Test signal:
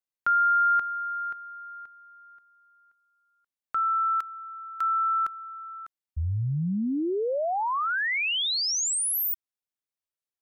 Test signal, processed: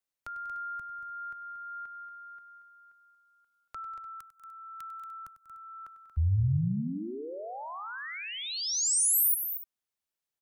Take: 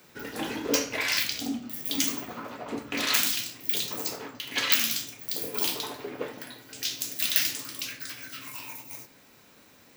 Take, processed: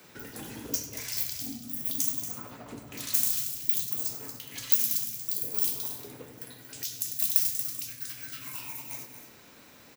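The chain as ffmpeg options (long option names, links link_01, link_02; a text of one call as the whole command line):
ffmpeg -i in.wav -filter_complex "[0:a]acrossover=split=160|6600[link_01][link_02][link_03];[link_02]acompressor=threshold=-41dB:ratio=10:attack=0.65:release=907:knee=1:detection=peak[link_04];[link_01][link_04][link_03]amix=inputs=3:normalize=0,aecho=1:1:98|192|232|297:0.188|0.141|0.316|0.133,volume=2dB" out.wav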